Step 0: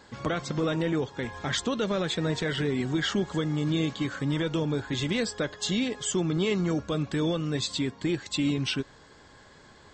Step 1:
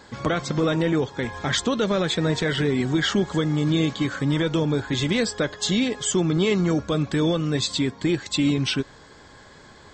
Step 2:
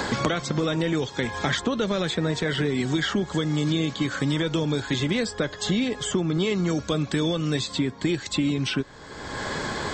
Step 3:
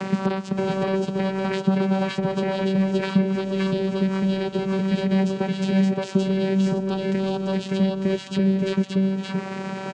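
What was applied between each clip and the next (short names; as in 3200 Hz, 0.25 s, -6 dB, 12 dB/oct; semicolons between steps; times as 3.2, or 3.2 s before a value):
notch 2800 Hz, Q 25; gain +5.5 dB
three-band squash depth 100%; gain -3 dB
vocoder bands 8, saw 192 Hz; tapped delay 0.512/0.569/0.576 s -14/-3/-5 dB; gain +3.5 dB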